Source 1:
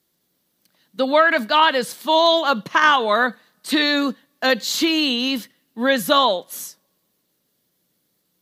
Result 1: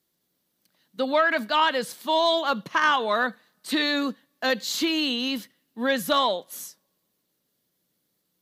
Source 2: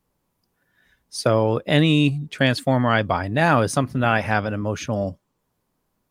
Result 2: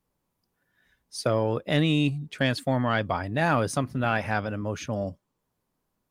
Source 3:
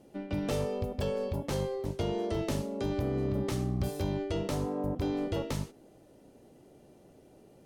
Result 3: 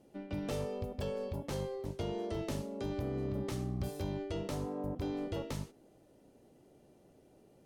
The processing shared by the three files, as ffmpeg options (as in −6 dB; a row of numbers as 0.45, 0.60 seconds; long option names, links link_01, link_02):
-af "asoftclip=type=tanh:threshold=-3dB,volume=-5.5dB"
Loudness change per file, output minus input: −6.0, −6.0, −5.5 LU